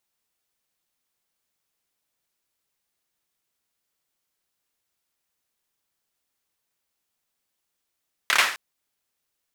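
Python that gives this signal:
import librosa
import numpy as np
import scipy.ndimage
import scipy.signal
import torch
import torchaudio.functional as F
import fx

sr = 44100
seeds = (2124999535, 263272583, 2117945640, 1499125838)

y = fx.drum_clap(sr, seeds[0], length_s=0.26, bursts=4, spacing_ms=28, hz=1700.0, decay_s=0.49)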